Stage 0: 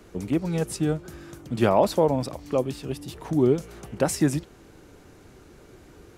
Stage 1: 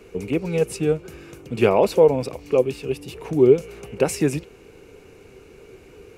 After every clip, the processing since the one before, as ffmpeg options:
-af "superequalizer=7b=2.82:12b=2.82"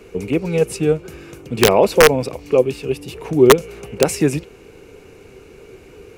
-af "aeval=exprs='(mod(1.78*val(0)+1,2)-1)/1.78':c=same,volume=4dB"

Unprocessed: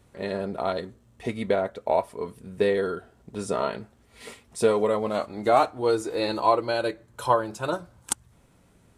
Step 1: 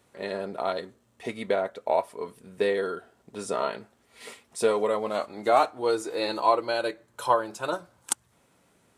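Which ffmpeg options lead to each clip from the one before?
-af "highpass=f=380:p=1"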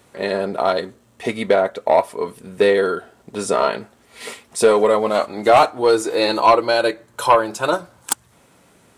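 -af "aeval=exprs='0.562*sin(PI/2*2.24*val(0)/0.562)':c=same"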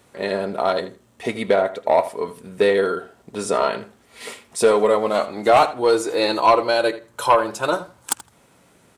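-filter_complex "[0:a]asplit=2[a][b];[b]adelay=81,lowpass=f=4.7k:p=1,volume=-14.5dB,asplit=2[c][d];[d]adelay=81,lowpass=f=4.7k:p=1,volume=0.18[e];[a][c][e]amix=inputs=3:normalize=0,volume=-2dB"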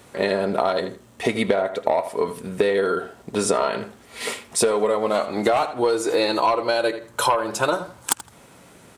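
-af "acompressor=threshold=-23dB:ratio=12,volume=6.5dB"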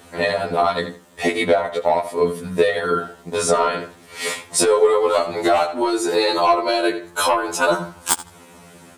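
-af "afftfilt=real='re*2*eq(mod(b,4),0)':imag='im*2*eq(mod(b,4),0)':win_size=2048:overlap=0.75,volume=6dB"

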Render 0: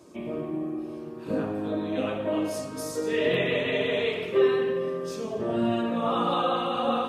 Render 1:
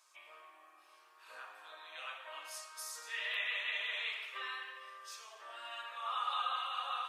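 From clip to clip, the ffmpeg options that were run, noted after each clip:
-af "highpass=f=1.1k:w=0.5412,highpass=f=1.1k:w=1.3066,volume=-5.5dB"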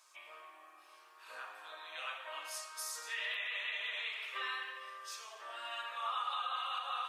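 -af "alimiter=level_in=7.5dB:limit=-24dB:level=0:latency=1:release=238,volume=-7.5dB,volume=3dB"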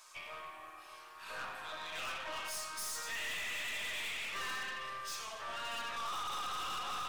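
-af "aeval=exprs='(tanh(224*val(0)+0.45)-tanh(0.45))/224':c=same,volume=9dB"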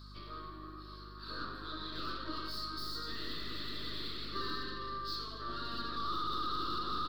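-af "firequalizer=gain_entry='entry(170,0);entry(330,10);entry(500,-8);entry(810,-25);entry(1200,-3);entry(2400,-27);entry(4300,6);entry(6200,-28);entry(9700,-26);entry(15000,-14)':delay=0.05:min_phase=1,aeval=exprs='val(0)+0.00126*(sin(2*PI*50*n/s)+sin(2*PI*2*50*n/s)/2+sin(2*PI*3*50*n/s)/3+sin(2*PI*4*50*n/s)/4+sin(2*PI*5*50*n/s)/5)':c=same,volume=7.5dB"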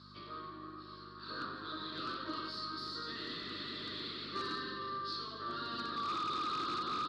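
-af "aeval=exprs='0.0316*(abs(mod(val(0)/0.0316+3,4)-2)-1)':c=same,highpass=130,lowpass=4.8k,volume=1dB"

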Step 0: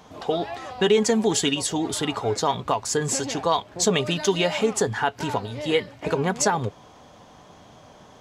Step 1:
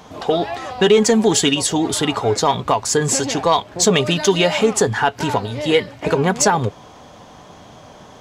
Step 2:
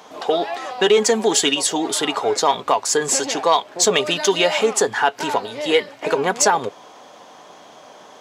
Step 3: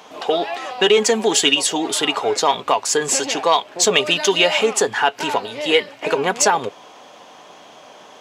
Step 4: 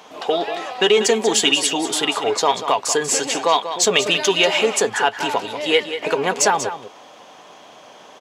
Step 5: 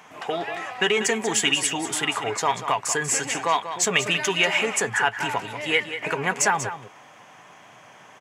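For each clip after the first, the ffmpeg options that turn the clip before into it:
-af "acontrast=83"
-af "highpass=360"
-af "equalizer=f=2.7k:w=2.5:g=5.5"
-af "aecho=1:1:189:0.299,volume=-1dB"
-af "equalizer=f=125:t=o:w=1:g=11,equalizer=f=250:t=o:w=1:g=-3,equalizer=f=500:t=o:w=1:g=-6,equalizer=f=2k:t=o:w=1:g=8,equalizer=f=4k:t=o:w=1:g=-10,equalizer=f=8k:t=o:w=1:g=3,volume=-4dB"

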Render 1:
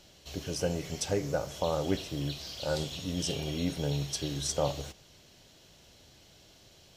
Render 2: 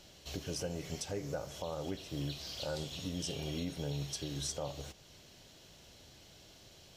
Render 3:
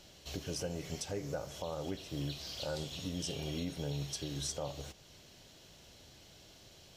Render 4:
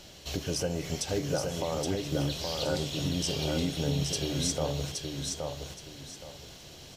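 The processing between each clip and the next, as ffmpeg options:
-af "alimiter=level_in=3.5dB:limit=-24dB:level=0:latency=1:release=452,volume=-3.5dB"
-af anull
-af "aecho=1:1:821|1642|2463|3284:0.631|0.164|0.0427|0.0111,volume=7.5dB"

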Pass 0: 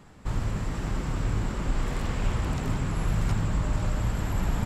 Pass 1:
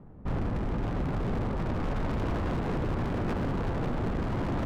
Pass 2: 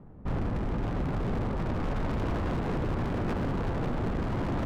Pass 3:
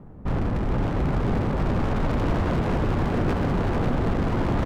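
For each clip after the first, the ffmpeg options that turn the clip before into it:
-af "adynamicsmooth=sensitivity=2.5:basefreq=570,bandreject=f=50:t=h:w=6,bandreject=f=100:t=h:w=6,bandreject=f=150:t=h:w=6,bandreject=f=200:t=h:w=6,bandreject=f=250:t=h:w=6,bandreject=f=300:t=h:w=6,bandreject=f=350:t=h:w=6,aeval=exprs='0.0355*(abs(mod(val(0)/0.0355+3,4)-2)-1)':c=same,volume=4.5dB"
-af anull
-af "aecho=1:1:440:0.531,volume=5.5dB"

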